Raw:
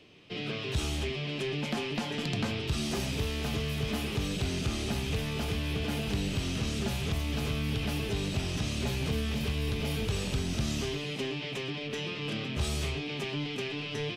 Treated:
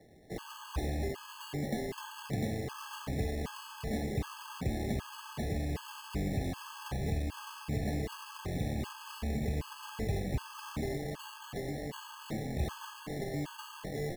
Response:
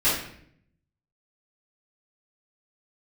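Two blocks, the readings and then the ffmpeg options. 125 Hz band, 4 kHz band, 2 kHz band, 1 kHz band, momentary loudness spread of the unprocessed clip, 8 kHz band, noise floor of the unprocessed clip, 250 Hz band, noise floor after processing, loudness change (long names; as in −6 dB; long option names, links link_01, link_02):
−4.5 dB, −12.0 dB, −8.5 dB, −1.0 dB, 3 LU, −7.0 dB, −37 dBFS, −4.5 dB, −49 dBFS, −5.5 dB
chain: -af "acrusher=samples=18:mix=1:aa=0.000001,asuperstop=centerf=1400:order=20:qfactor=7.2,afftfilt=real='re*gt(sin(2*PI*1.3*pts/sr)*(1-2*mod(floor(b*sr/1024/860),2)),0)':imag='im*gt(sin(2*PI*1.3*pts/sr)*(1-2*mod(floor(b*sr/1024/860),2)),0)':win_size=1024:overlap=0.75,volume=-1.5dB"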